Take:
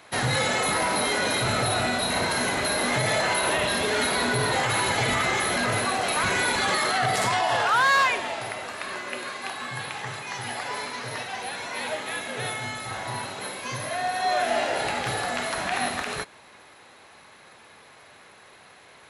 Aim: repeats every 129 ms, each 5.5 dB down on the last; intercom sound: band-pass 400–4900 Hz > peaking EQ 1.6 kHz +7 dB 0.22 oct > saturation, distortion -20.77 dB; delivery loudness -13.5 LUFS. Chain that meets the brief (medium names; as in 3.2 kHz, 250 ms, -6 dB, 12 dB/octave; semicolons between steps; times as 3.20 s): band-pass 400–4900 Hz; peaking EQ 1.6 kHz +7 dB 0.22 oct; feedback delay 129 ms, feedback 53%, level -5.5 dB; saturation -11.5 dBFS; trim +10.5 dB